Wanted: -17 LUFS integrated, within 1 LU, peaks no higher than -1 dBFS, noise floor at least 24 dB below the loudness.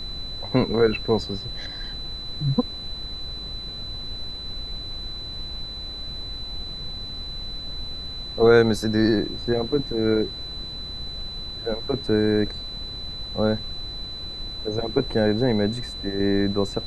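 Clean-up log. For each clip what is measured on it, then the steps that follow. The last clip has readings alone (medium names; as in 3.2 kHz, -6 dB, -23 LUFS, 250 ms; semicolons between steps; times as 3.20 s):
steady tone 4 kHz; tone level -33 dBFS; noise floor -35 dBFS; noise floor target -50 dBFS; loudness -25.5 LUFS; peak level -3.5 dBFS; loudness target -17.0 LUFS
-> band-stop 4 kHz, Q 30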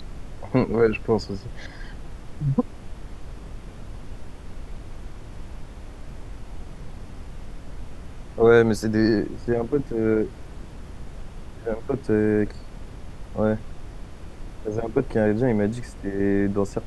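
steady tone not found; noise floor -40 dBFS; noise floor target -48 dBFS
-> noise print and reduce 8 dB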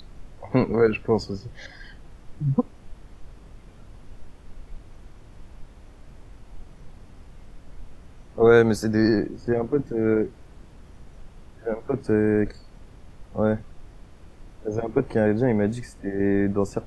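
noise floor -48 dBFS; loudness -23.5 LUFS; peak level -4.0 dBFS; loudness target -17.0 LUFS
-> trim +6.5 dB; peak limiter -1 dBFS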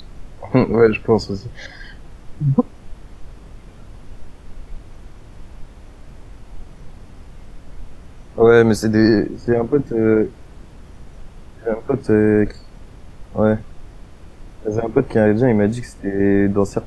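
loudness -17.5 LUFS; peak level -1.0 dBFS; noise floor -42 dBFS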